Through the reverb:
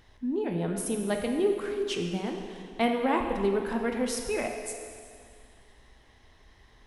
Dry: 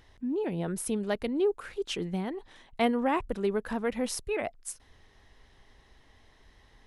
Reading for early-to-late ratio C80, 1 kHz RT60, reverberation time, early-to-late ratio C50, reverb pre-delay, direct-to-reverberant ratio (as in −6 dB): 5.5 dB, 2.2 s, 2.2 s, 4.5 dB, 6 ms, 2.5 dB